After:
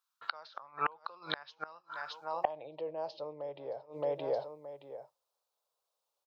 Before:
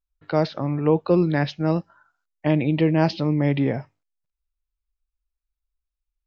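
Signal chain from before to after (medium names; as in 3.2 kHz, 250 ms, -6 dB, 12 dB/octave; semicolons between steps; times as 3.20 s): peak limiter -13 dBFS, peak gain reduction 6.5 dB; graphic EQ 125/250/500/1000/2000/4000 Hz +12/-9/+6/+9/-12/+5 dB; feedback delay 621 ms, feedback 23%, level -21.5 dB; high-pass sweep 1.4 kHz -> 530 Hz, 2.00–2.78 s; inverted gate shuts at -24 dBFS, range -29 dB; trim +7.5 dB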